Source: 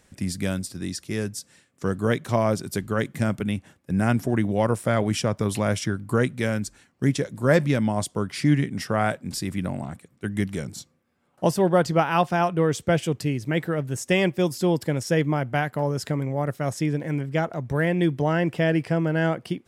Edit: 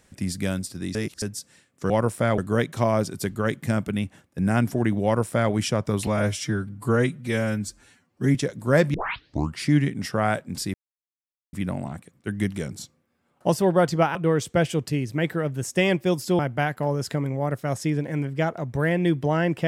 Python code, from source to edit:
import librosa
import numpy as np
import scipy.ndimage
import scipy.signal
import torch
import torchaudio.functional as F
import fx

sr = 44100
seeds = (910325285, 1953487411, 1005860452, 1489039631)

y = fx.edit(x, sr, fx.reverse_span(start_s=0.95, length_s=0.27),
    fx.duplicate(start_s=4.56, length_s=0.48, to_s=1.9),
    fx.stretch_span(start_s=5.59, length_s=1.52, factor=1.5),
    fx.tape_start(start_s=7.7, length_s=0.66),
    fx.insert_silence(at_s=9.5, length_s=0.79),
    fx.cut(start_s=12.12, length_s=0.36),
    fx.cut(start_s=14.72, length_s=0.63), tone=tone)